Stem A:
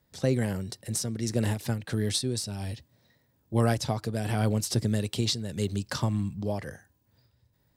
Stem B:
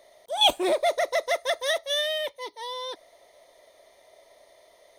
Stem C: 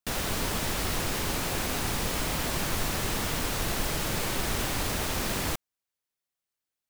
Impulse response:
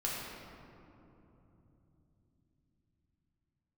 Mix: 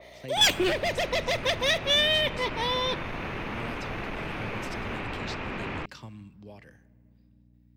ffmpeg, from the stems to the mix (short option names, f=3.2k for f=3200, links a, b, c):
-filter_complex "[0:a]aeval=exprs='val(0)+0.01*(sin(2*PI*60*n/s)+sin(2*PI*2*60*n/s)/2+sin(2*PI*3*60*n/s)/3+sin(2*PI*4*60*n/s)/4+sin(2*PI*5*60*n/s)/5)':c=same,volume=-14.5dB,asplit=2[a][b];[b]volume=-22dB[c];[1:a]lowshelf=f=400:g=9,aeval=exprs='0.398*sin(PI/2*2.82*val(0)/0.398)':c=same,adynamicequalizer=threshold=0.0282:dfrequency=4000:dqfactor=0.7:tfrequency=4000:tqfactor=0.7:attack=5:release=100:ratio=0.375:range=2:mode=cutabove:tftype=highshelf,volume=-8dB,asplit=2[d][e];[e]volume=-23dB[f];[2:a]lowpass=1.5k,asoftclip=type=tanh:threshold=-24.5dB,adelay=300,volume=0.5dB[g];[3:a]atrim=start_sample=2205[h];[c][f]amix=inputs=2:normalize=0[i];[i][h]afir=irnorm=-1:irlink=0[j];[a][d][g][j]amix=inputs=4:normalize=0,lowshelf=f=98:g=-7.5,acrossover=split=230|3000[k][l][m];[l]acompressor=threshold=-25dB:ratio=6[n];[k][n][m]amix=inputs=3:normalize=0,equalizer=f=630:t=o:w=0.67:g=-3,equalizer=f=2.5k:t=o:w=0.67:g=11,equalizer=f=10k:t=o:w=0.67:g=-9"